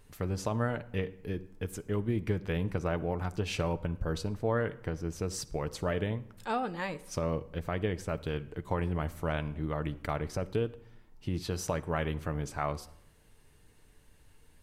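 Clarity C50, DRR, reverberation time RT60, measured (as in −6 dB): 18.0 dB, 10.5 dB, 0.80 s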